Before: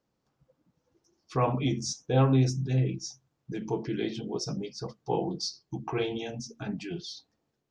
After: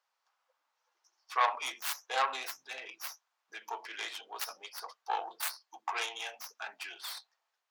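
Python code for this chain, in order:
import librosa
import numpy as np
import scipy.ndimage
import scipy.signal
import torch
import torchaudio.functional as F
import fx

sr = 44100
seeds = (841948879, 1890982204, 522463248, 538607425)

y = fx.tracing_dist(x, sr, depth_ms=0.41)
y = scipy.signal.sosfilt(scipy.signal.butter(4, 870.0, 'highpass', fs=sr, output='sos'), y)
y = fx.high_shelf(y, sr, hz=5300.0, db=-7.5)
y = y * 10.0 ** (5.0 / 20.0)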